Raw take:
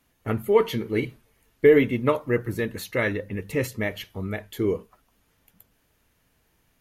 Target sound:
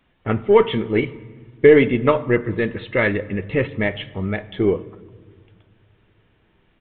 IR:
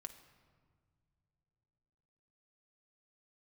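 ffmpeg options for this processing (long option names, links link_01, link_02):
-filter_complex "[0:a]asplit=2[link_01][link_02];[1:a]atrim=start_sample=2205[link_03];[link_02][link_03]afir=irnorm=-1:irlink=0,volume=3dB[link_04];[link_01][link_04]amix=inputs=2:normalize=0,aeval=exprs='0.794*(cos(1*acos(clip(val(0)/0.794,-1,1)))-cos(1*PI/2))+0.0126*(cos(8*acos(clip(val(0)/0.794,-1,1)))-cos(8*PI/2))':channel_layout=same,aresample=8000,aresample=44100,volume=1dB"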